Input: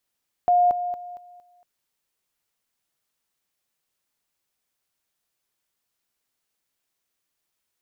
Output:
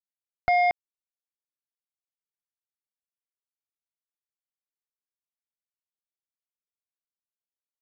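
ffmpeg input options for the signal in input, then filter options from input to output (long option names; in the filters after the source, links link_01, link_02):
-f lavfi -i "aevalsrc='pow(10,(-14.5-10*floor(t/0.23))/20)*sin(2*PI*711*t)':duration=1.15:sample_rate=44100"
-af "asubboost=boost=11.5:cutoff=150,aresample=11025,acrusher=bits=2:mix=0:aa=0.5,aresample=44100"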